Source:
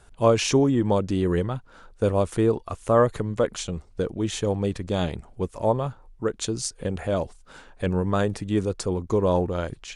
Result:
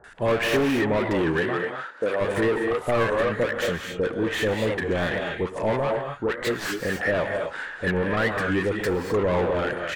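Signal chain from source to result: tracing distortion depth 0.12 ms; bell 1800 Hz +14.5 dB 0.37 oct; non-linear reverb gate 0.28 s rising, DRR 7.5 dB; overdrive pedal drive 27 dB, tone 2500 Hz, clips at -5.5 dBFS; bands offset in time lows, highs 40 ms, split 910 Hz; dynamic EQ 5900 Hz, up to -7 dB, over -39 dBFS, Q 1.2; 1.23–2.2 HPF 97 Hz -> 360 Hz 12 dB/oct; record warp 33 1/3 rpm, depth 160 cents; gain -8 dB

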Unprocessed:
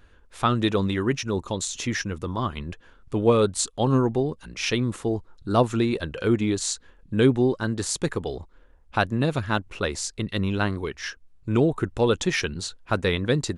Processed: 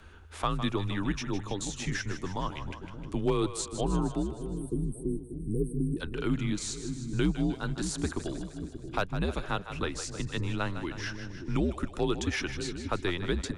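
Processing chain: hard clip -10 dBFS, distortion -32 dB; spectral delete 4.23–5.97, 560–8100 Hz; frequency shift -87 Hz; split-band echo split 430 Hz, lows 0.58 s, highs 0.155 s, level -11 dB; three-band squash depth 40%; gain -7 dB

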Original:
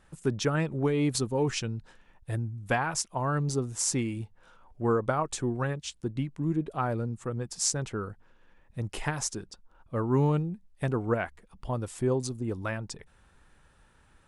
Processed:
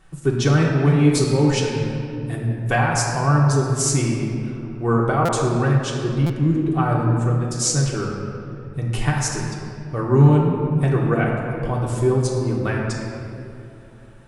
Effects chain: bell 140 Hz +5 dB 0.39 oct; reverb RT60 2.8 s, pre-delay 3 ms, DRR -3.5 dB; stuck buffer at 5.25/6.26, samples 256, times 5; gain +4 dB

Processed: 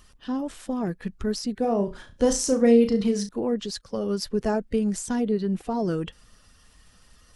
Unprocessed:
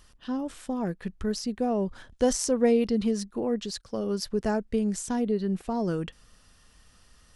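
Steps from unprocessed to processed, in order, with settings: bin magnitudes rounded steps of 15 dB; 1.61–3.29 flutter echo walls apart 5.9 m, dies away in 0.26 s; gain +2.5 dB

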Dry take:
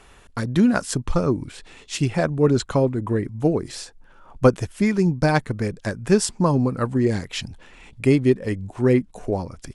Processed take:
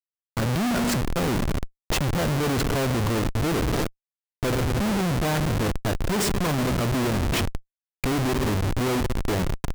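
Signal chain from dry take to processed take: spring tank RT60 2.3 s, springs 58 ms, chirp 60 ms, DRR 12 dB; Schmitt trigger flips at -28 dBFS; gain -1.5 dB

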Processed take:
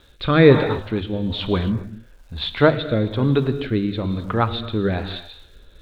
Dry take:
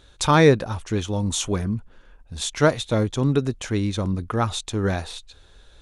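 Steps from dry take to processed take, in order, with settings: elliptic low-pass 4000 Hz, stop band 40 dB; notches 50/100/150 Hz; non-linear reverb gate 0.3 s flat, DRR 10 dB; crackle 570/s -50 dBFS; rotary speaker horn 1.1 Hz; gain +5 dB

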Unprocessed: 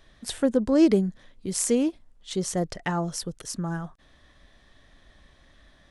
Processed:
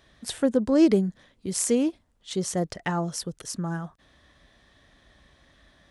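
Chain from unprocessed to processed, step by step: HPF 50 Hz

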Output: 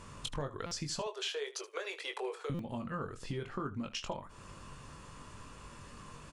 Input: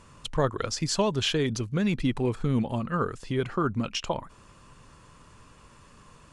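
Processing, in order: 0.99–2.5 steep high-pass 400 Hz 72 dB/oct; compressor 5:1, threshold -39 dBFS, peak gain reduction 17.5 dB; on a send: early reflections 21 ms -6.5 dB, 76 ms -16.5 dB; on the sum: stuck buffer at 0.66/2.54, samples 256, times 8; gain +1.5 dB

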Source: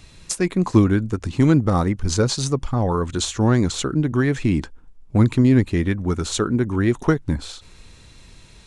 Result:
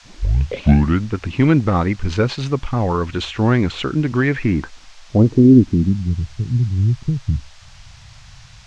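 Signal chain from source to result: tape start at the beginning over 1.08 s; low-pass sweep 2600 Hz -> 120 Hz, 4.26–6.16; band noise 610–6300 Hz -50 dBFS; gain +1.5 dB

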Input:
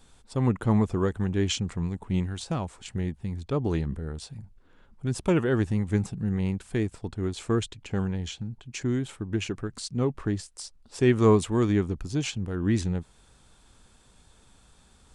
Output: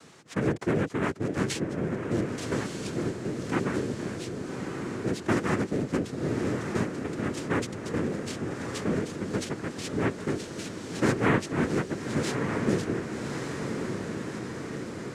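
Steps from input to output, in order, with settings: noise vocoder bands 3; diffused feedback echo 1.194 s, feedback 53%, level -8 dB; three-band squash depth 40%; gain -2 dB

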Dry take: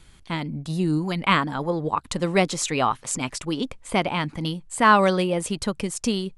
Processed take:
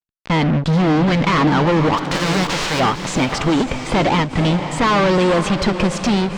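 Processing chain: 1.97–2.79 spectral whitening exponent 0.1; fuzz box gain 38 dB, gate -42 dBFS; air absorption 150 m; diffused feedback echo 0.52 s, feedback 43%, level -9 dB; ending taper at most 170 dB/s

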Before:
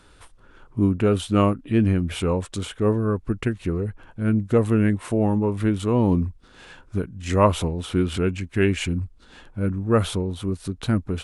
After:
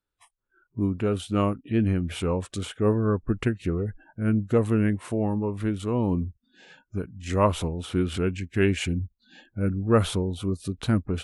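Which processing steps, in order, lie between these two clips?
spectral noise reduction 29 dB; vocal rider 2 s; gain -3.5 dB

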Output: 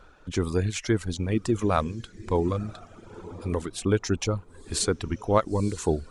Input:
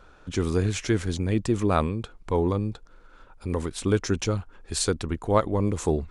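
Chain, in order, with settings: diffused feedback echo 0.971 s, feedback 42%, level -15 dB; reverb removal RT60 0.87 s

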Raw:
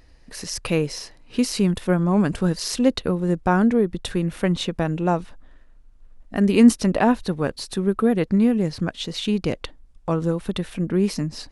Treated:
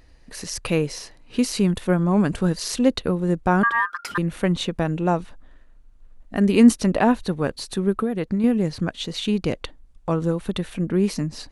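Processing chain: notch 5200 Hz, Q 16; 3.63–4.18 ring modulator 1400 Hz; 7.93–8.44 compressor, threshold -20 dBFS, peak gain reduction 7 dB

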